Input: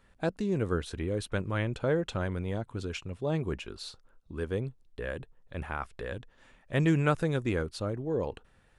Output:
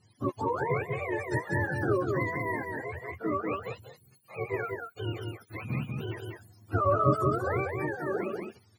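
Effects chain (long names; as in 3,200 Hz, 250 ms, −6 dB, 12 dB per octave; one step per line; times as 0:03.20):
frequency axis turned over on the octave scale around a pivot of 430 Hz
single-tap delay 190 ms −4 dB
level +1.5 dB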